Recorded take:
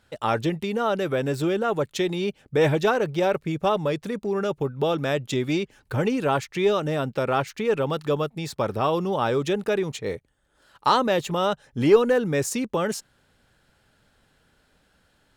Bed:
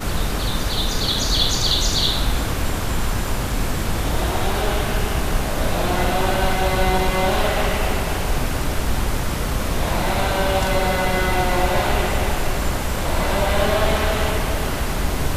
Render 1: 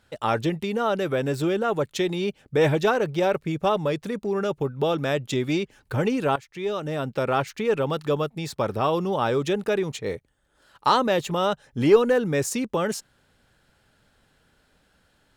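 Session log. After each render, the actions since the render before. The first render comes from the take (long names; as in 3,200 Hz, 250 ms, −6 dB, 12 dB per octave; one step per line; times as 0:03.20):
0:06.36–0:07.22: fade in, from −16.5 dB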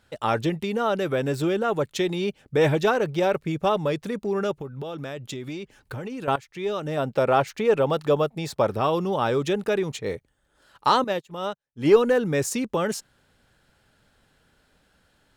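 0:04.51–0:06.28: downward compressor 5 to 1, threshold −31 dBFS
0:06.97–0:08.69: parametric band 650 Hz +5.5 dB 1.1 octaves
0:11.04–0:11.88: expander for the loud parts 2.5 to 1, over −41 dBFS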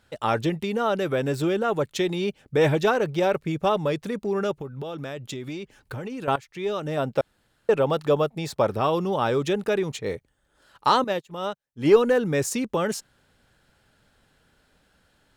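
0:07.21–0:07.69: fill with room tone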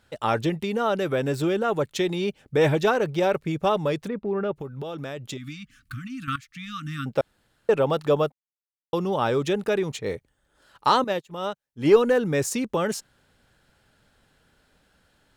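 0:04.08–0:04.56: high-frequency loss of the air 420 metres
0:05.37–0:07.06: linear-phase brick-wall band-stop 300–1,100 Hz
0:08.32–0:08.93: silence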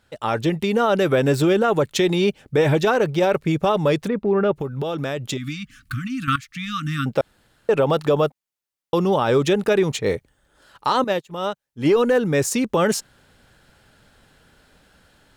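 automatic gain control gain up to 8 dB
brickwall limiter −9.5 dBFS, peak gain reduction 8 dB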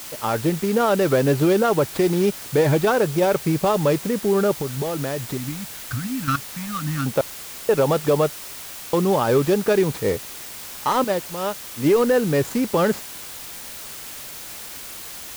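running median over 15 samples
bit-depth reduction 6 bits, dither triangular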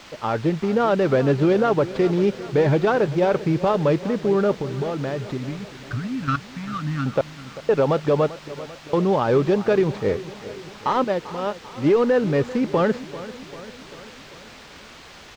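high-frequency loss of the air 170 metres
repeating echo 393 ms, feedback 59%, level −16 dB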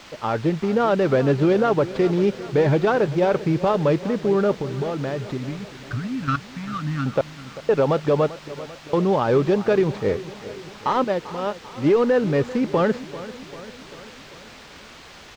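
no processing that can be heard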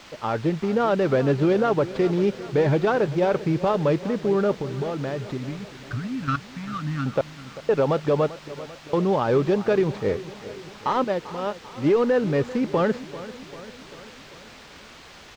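level −2 dB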